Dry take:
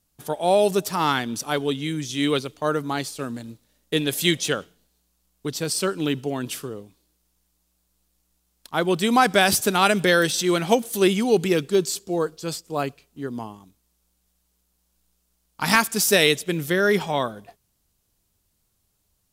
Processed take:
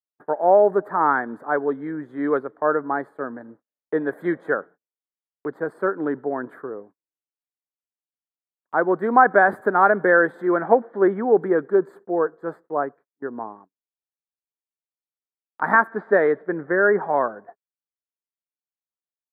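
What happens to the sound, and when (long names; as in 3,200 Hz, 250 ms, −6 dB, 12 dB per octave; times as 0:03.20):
0:10.47–0:11.39: low-pass filter 3,700 Hz 24 dB per octave
0:12.73–0:13.22: fade out, to −14.5 dB
0:15.87–0:17.01: low-pass filter 4,500 Hz → 2,200 Hz 24 dB per octave
whole clip: elliptic low-pass filter 1,700 Hz, stop band 40 dB; noise gate −46 dBFS, range −34 dB; high-pass filter 350 Hz 12 dB per octave; level +4.5 dB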